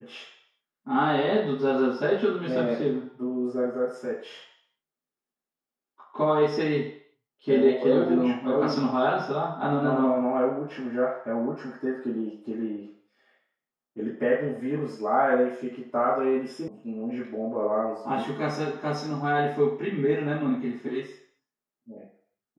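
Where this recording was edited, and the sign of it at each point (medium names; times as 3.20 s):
16.68 s: sound stops dead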